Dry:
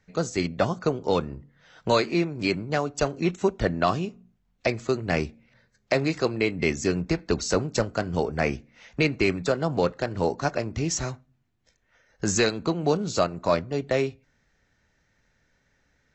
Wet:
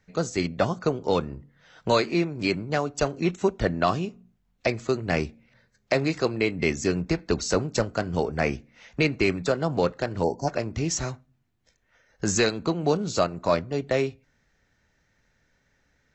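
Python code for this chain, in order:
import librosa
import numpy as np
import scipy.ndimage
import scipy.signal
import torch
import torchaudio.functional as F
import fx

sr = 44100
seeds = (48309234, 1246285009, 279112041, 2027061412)

y = fx.spec_box(x, sr, start_s=10.23, length_s=0.25, low_hz=1000.0, high_hz=4300.0, gain_db=-27)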